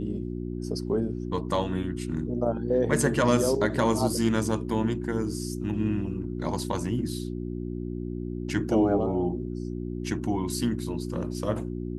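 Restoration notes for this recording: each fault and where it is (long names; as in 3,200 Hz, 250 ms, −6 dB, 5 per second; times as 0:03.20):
mains hum 60 Hz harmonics 6 −33 dBFS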